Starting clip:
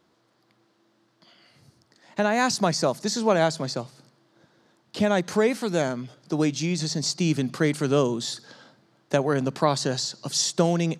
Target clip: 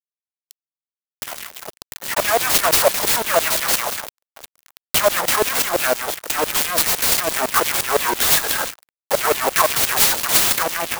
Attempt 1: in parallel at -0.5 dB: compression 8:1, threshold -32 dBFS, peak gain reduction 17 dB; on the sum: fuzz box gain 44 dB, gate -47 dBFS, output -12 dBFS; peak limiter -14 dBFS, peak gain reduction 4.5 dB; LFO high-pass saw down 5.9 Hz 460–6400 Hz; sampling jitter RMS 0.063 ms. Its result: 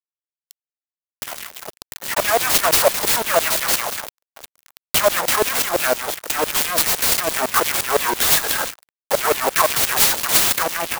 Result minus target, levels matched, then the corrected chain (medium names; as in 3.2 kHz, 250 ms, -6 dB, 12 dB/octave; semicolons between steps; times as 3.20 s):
compression: peak gain reduction +8.5 dB
in parallel at -0.5 dB: compression 8:1, threshold -22 dBFS, peak gain reduction 8 dB; on the sum: fuzz box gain 44 dB, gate -47 dBFS, output -12 dBFS; peak limiter -14 dBFS, peak gain reduction 5 dB; LFO high-pass saw down 5.9 Hz 460–6400 Hz; sampling jitter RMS 0.063 ms